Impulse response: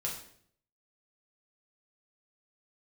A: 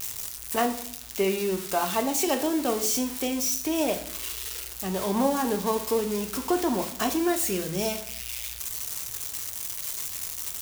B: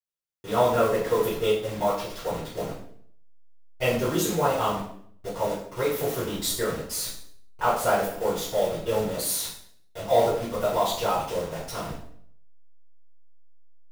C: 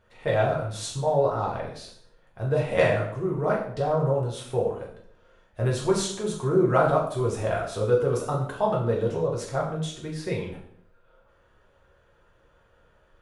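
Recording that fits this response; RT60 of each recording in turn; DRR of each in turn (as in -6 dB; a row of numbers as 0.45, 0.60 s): C; 0.60, 0.60, 0.60 s; 6.0, -13.5, -3.5 dB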